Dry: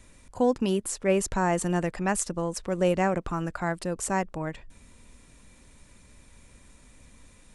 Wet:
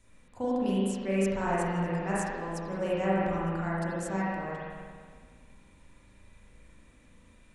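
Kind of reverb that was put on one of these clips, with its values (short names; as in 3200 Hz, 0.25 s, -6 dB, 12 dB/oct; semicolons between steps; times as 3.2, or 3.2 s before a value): spring tank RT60 1.8 s, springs 36/46 ms, chirp 50 ms, DRR -8 dB; gain -11.5 dB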